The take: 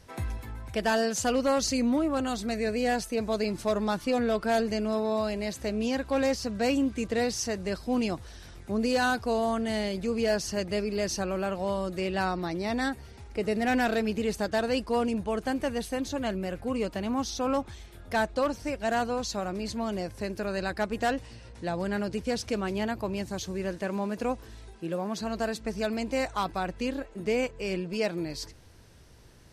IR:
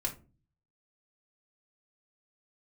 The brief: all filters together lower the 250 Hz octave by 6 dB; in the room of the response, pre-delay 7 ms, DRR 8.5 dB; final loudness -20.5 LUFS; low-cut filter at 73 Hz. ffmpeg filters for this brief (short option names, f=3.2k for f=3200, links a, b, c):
-filter_complex "[0:a]highpass=73,equalizer=f=250:t=o:g=-7,asplit=2[a][b];[1:a]atrim=start_sample=2205,adelay=7[c];[b][c]afir=irnorm=-1:irlink=0,volume=-11.5dB[d];[a][d]amix=inputs=2:normalize=0,volume=11dB"